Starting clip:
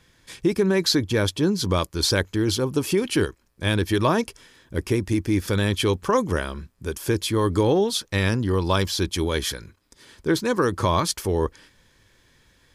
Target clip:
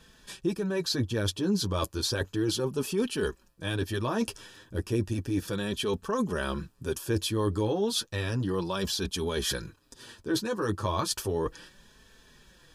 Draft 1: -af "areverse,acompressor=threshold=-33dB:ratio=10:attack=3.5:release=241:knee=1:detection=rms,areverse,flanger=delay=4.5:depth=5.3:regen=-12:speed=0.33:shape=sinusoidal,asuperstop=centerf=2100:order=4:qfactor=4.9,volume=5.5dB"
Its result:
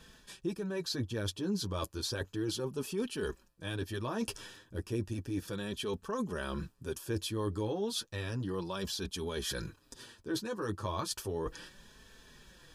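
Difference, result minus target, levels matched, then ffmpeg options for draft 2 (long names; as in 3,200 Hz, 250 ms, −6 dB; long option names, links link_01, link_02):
downward compressor: peak gain reduction +6.5 dB
-af "areverse,acompressor=threshold=-25.5dB:ratio=10:attack=3.5:release=241:knee=1:detection=rms,areverse,flanger=delay=4.5:depth=5.3:regen=-12:speed=0.33:shape=sinusoidal,asuperstop=centerf=2100:order=4:qfactor=4.9,volume=5.5dB"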